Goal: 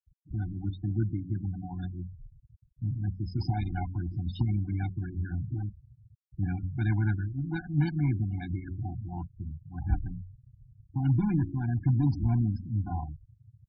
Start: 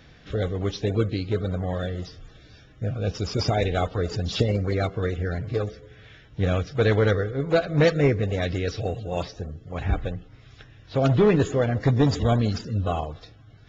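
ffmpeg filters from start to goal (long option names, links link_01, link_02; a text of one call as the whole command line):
ffmpeg -i in.wav -filter_complex "[0:a]acrossover=split=120[link_01][link_02];[link_02]acrusher=bits=6:mode=log:mix=0:aa=0.000001[link_03];[link_01][link_03]amix=inputs=2:normalize=0,bass=frequency=250:gain=5,treble=frequency=4000:gain=-4,aresample=16000,volume=9.5dB,asoftclip=hard,volume=-9.5dB,aresample=44100,bandreject=frequency=92.52:width_type=h:width=4,bandreject=frequency=185.04:width_type=h:width=4,bandreject=frequency=277.56:width_type=h:width=4,bandreject=frequency=370.08:width_type=h:width=4,afftfilt=real='re*gte(hypot(re,im),0.0501)':imag='im*gte(hypot(re,im),0.0501)':win_size=1024:overlap=0.75,adynamicequalizer=threshold=0.00501:dfrequency=3400:dqfactor=0.74:tfrequency=3400:tqfactor=0.74:attack=5:release=100:ratio=0.375:range=2.5:mode=cutabove:tftype=bell,afftfilt=real='re*eq(mod(floor(b*sr/1024/350),2),0)':imag='im*eq(mod(floor(b*sr/1024/350),2),0)':win_size=1024:overlap=0.75,volume=-7.5dB" out.wav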